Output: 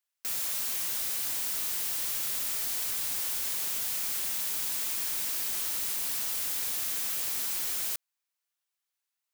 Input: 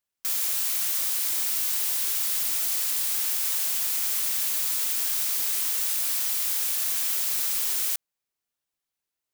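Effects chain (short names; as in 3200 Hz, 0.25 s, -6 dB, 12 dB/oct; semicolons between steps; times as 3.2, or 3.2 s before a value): HPF 860 Hz; overloaded stage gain 30 dB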